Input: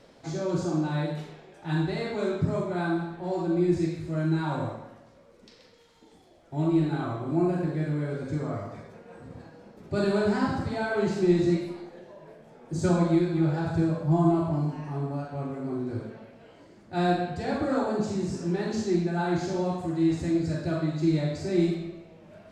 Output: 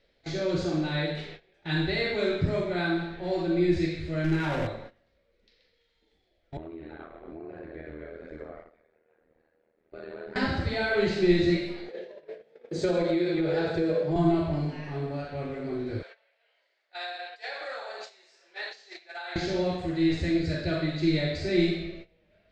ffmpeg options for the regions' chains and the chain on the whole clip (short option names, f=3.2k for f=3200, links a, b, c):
-filter_complex "[0:a]asettb=1/sr,asplit=3[a][b][c];[a]atrim=end=4.244[d];[b]atrim=start=4.24:end=4.67,asetpts=PTS-STARTPTS,afade=t=in:d=0.004:c=qsin,afade=t=out:st=0.426:d=0.004:c=qsin,aeval=exprs='val(0)+0.5*0.0188*sgn(val(0))':c=same,equalizer=f=4k:t=o:w=0.41:g=-11.5[e];[c]atrim=start=4.666[f];[d][e]acrossfade=d=0.004:c1=hsin:c2=qsin[g];[g][f]acrossfade=d=0.004:c1=qsin:c2=hsin,asettb=1/sr,asplit=3[h][i][j];[h]atrim=end=6.574[k];[i]atrim=start=6.57:end=10.36,asetpts=PTS-STARTPTS,afade=t=in:d=0.004:c=qsin,afade=t=out:st=3.786:d=0.004:c=qsin,acrossover=split=230 2100:gain=0.0794 1 0.141[l][m][n];[l][m][n]amix=inputs=3:normalize=0,acompressor=threshold=-34dB:ratio=12:attack=3.2:release=140:knee=1:detection=peak,tremolo=f=80:d=0.889[o];[j]atrim=start=10.356[p];[k][o]acrossfade=d=0.004:c1=hsin:c2=qsin[q];[q][p]acrossfade=d=0.004:c1=qsin:c2=hsin,asettb=1/sr,asplit=3[r][s][t];[r]atrim=end=11.884[u];[s]atrim=start=11.88:end=14.16,asetpts=PTS-STARTPTS,afade=t=in:d=0.004:c=qsin,afade=t=out:st=2.276:d=0.004:c=qsin,highpass=200,equalizer=f=460:w=2.6:g=11.5,acompressor=threshold=-22dB:ratio=5:attack=3.2:release=140:knee=1:detection=peak[v];[t]atrim=start=14.156[w];[u][v]acrossfade=d=0.004:c1=hsin:c2=qsin[x];[x][w]acrossfade=d=0.004:c1=qsin:c2=hsin,asettb=1/sr,asplit=3[y][z][aa];[y]atrim=end=16.024[ab];[z]atrim=start=16.02:end=19.36,asetpts=PTS-STARTPTS,afade=t=in:d=0.004:c=qsin,afade=t=out:st=3.336:d=0.004:c=qsin,highpass=f=650:w=0.5412,highpass=f=650:w=1.3066,acompressor=threshold=-34dB:ratio=12:attack=3.2:release=140:knee=1:detection=peak[ac];[aa]atrim=start=19.356[ad];[ab][ac]acrossfade=d=0.004:c1=hsin:c2=qsin[ae];[ae][ad]acrossfade=d=0.004:c1=qsin:c2=hsin,aemphasis=mode=reproduction:type=bsi,agate=range=-17dB:threshold=-39dB:ratio=16:detection=peak,equalizer=f=125:t=o:w=1:g=-11,equalizer=f=250:t=o:w=1:g=-6,equalizer=f=500:t=o:w=1:g=4,equalizer=f=1k:t=o:w=1:g=-8,equalizer=f=2k:t=o:w=1:g=10,equalizer=f=4k:t=o:w=1:g=12"